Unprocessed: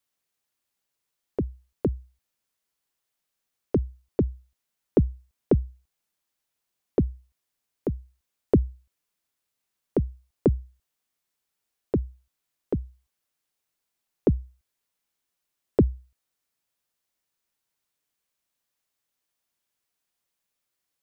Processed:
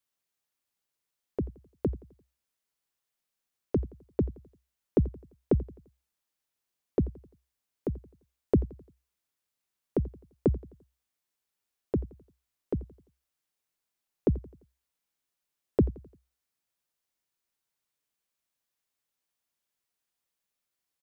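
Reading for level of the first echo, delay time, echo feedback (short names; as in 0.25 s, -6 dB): -19.5 dB, 86 ms, 46%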